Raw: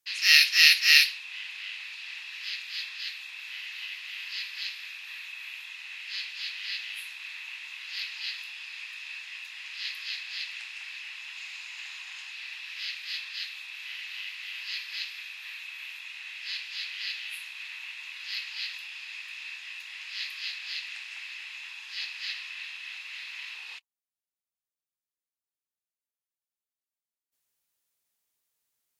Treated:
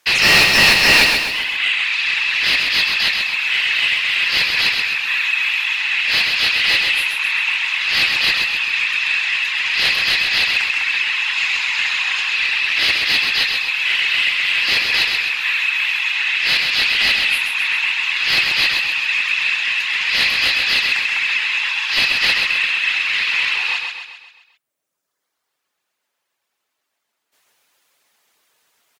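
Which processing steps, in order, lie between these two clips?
reverb removal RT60 1.4 s; overdrive pedal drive 33 dB, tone 1600 Hz, clips at -2.5 dBFS; feedback echo 0.131 s, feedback 50%, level -4.5 dB; gain +3.5 dB

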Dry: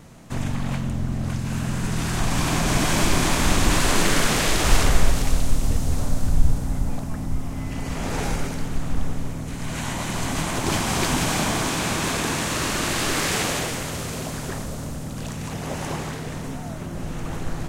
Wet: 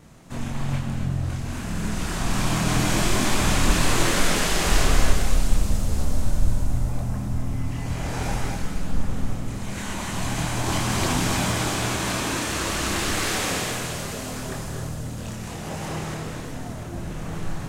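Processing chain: chorus voices 2, 0.27 Hz, delay 27 ms, depth 3.6 ms; non-linear reverb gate 0.3 s rising, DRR 3.5 dB

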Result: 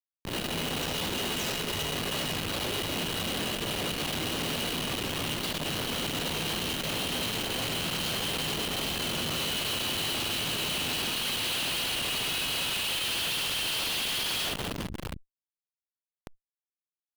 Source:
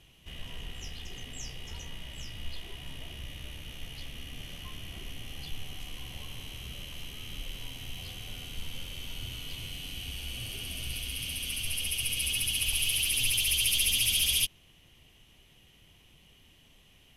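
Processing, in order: elliptic band-stop 550–2600 Hz, stop band 80 dB; bell 2000 Hz +11.5 dB 0.28 oct; in parallel at +2 dB: negative-ratio compressor -37 dBFS, ratio -0.5; on the sum: limiter -22.5 dBFS, peak gain reduction 10 dB; harmoniser +5 st -4 dB, +7 st -12 dB; BPF 250–6300 Hz; short-mantissa float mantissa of 4-bit; tremolo 5.1 Hz, depth 35%; tapped delay 72/97/144/261/335/701 ms -5.5/-5.5/-18.5/-19/-11.5/-11 dB; on a send at -7 dB: reverb RT60 0.50 s, pre-delay 3 ms; on the sum: Schmitt trigger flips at -38 dBFS; core saturation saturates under 210 Hz; gain +5 dB

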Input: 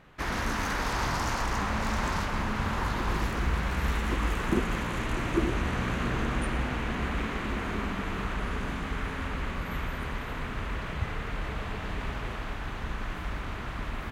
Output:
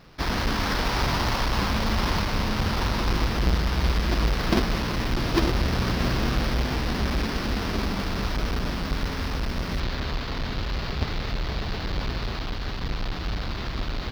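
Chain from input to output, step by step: half-waves squared off; resonant high shelf 6200 Hz -6.5 dB, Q 3, from 9.8 s -12.5 dB

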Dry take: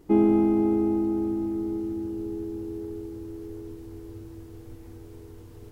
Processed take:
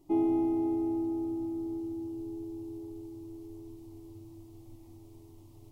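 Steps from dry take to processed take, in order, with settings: fixed phaser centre 310 Hz, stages 8; gain -5.5 dB

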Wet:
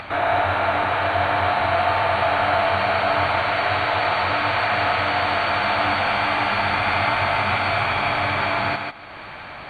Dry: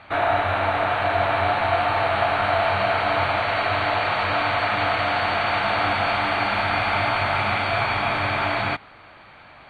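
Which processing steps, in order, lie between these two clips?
thinning echo 0.146 s, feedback 15%, high-pass 220 Hz, level -4 dB; upward compressor, threshold -26 dBFS

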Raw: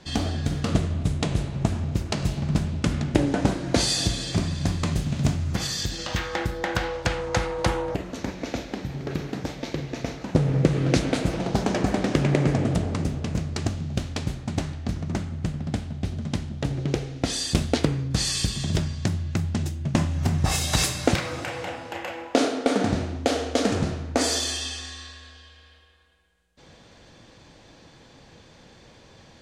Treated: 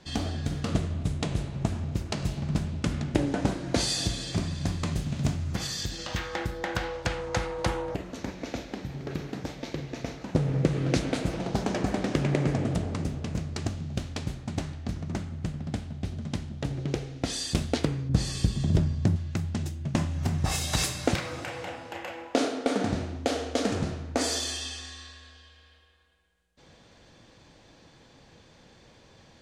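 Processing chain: 18.09–19.16 tilt shelf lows +6.5 dB; gain -4.5 dB

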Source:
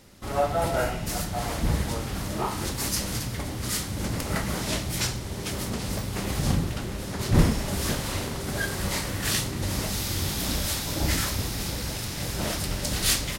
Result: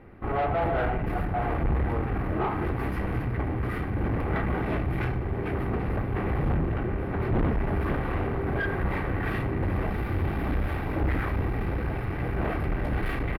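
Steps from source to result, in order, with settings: band shelf 5100 Hz -15 dB; notches 50/100 Hz; comb 2.6 ms, depth 37%; tube stage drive 29 dB, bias 0.45; air absorption 480 m; gain +8 dB

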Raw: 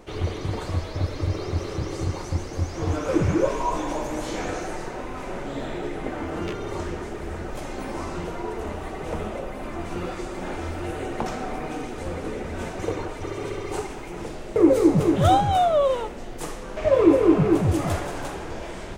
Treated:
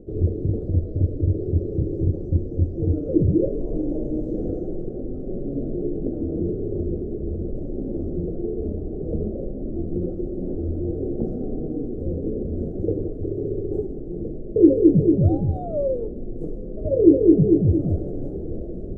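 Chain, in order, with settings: inverse Chebyshev low-pass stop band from 920 Hz, stop band 40 dB; in parallel at -1 dB: vocal rider within 3 dB 0.5 s; on the sum: gain -1 dB

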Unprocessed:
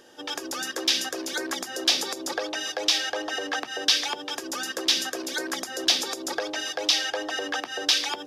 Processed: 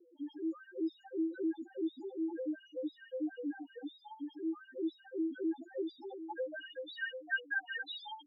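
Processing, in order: loudest bins only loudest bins 1; band-pass sweep 300 Hz -> 1700 Hz, 5.39–7.42; gain +8.5 dB

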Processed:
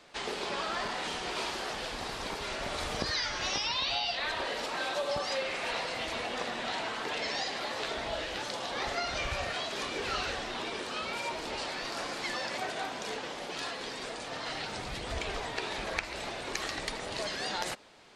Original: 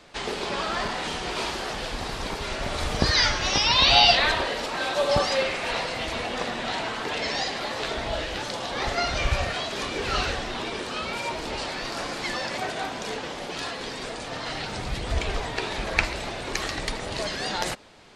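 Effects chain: low shelf 170 Hz -9 dB; compressor 12:1, threshold -24 dBFS, peak gain reduction 12 dB; gain -4.5 dB

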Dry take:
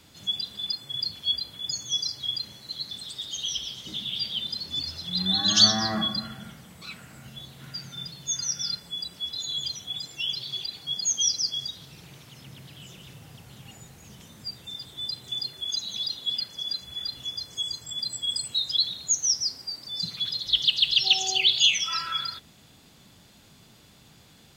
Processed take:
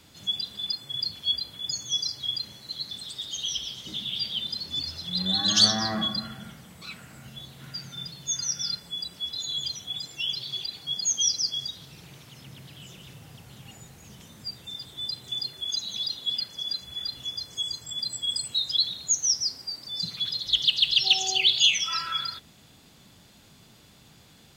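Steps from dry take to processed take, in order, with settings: core saturation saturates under 1500 Hz

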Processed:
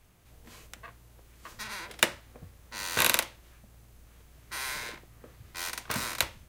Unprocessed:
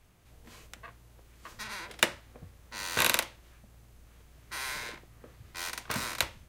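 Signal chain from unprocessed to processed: high shelf 9800 Hz +4.5 dB; in parallel at -7 dB: short-mantissa float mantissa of 2-bit; on the sum: gain -2.5 dB

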